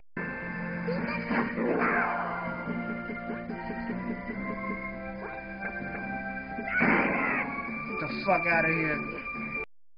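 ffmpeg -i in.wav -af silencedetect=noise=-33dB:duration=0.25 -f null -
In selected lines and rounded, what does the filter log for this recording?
silence_start: 9.64
silence_end: 9.98 | silence_duration: 0.34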